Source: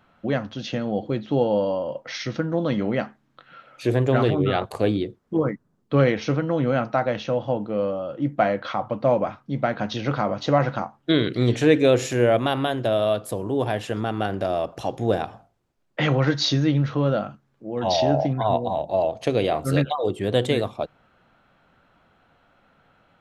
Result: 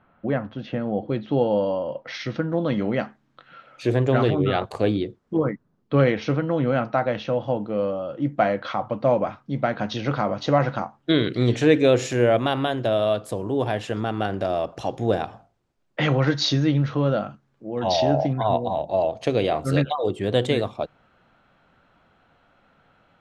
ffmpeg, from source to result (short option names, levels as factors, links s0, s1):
-af "asetnsamples=n=441:p=0,asendcmd='1.08 lowpass f 4300;2.77 lowpass f 7900;5.37 lowpass f 4800;7.43 lowpass f 8500',lowpass=2000"